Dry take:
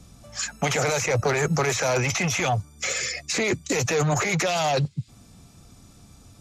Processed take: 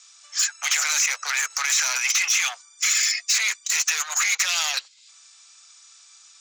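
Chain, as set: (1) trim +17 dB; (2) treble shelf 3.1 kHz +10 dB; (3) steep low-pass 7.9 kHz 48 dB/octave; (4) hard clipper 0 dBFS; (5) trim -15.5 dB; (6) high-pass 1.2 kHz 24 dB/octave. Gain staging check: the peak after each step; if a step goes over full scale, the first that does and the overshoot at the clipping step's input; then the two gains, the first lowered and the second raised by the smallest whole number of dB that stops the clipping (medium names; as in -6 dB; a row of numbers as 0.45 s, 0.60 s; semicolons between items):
+6.5 dBFS, +8.0 dBFS, +8.0 dBFS, 0.0 dBFS, -15.5 dBFS, -10.5 dBFS; step 1, 8.0 dB; step 1 +9 dB, step 5 -7.5 dB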